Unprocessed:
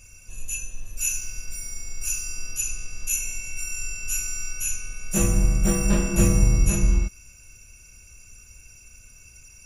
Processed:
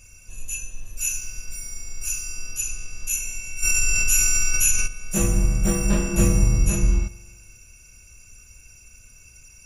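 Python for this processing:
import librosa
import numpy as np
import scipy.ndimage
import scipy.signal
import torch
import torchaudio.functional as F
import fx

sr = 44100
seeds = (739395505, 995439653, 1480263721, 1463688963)

y = fx.rev_spring(x, sr, rt60_s=1.4, pass_ms=(43,), chirp_ms=25, drr_db=17.0)
y = fx.env_flatten(y, sr, amount_pct=70, at=(3.62, 4.86), fade=0.02)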